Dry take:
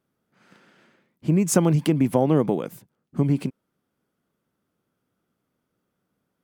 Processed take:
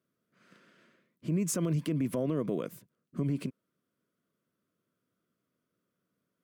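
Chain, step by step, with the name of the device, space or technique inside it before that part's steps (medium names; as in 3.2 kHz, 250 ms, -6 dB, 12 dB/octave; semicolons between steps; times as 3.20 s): PA system with an anti-feedback notch (high-pass 100 Hz; Butterworth band-stop 820 Hz, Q 3.3; peak limiter -17 dBFS, peak gain reduction 11.5 dB); trim -5.5 dB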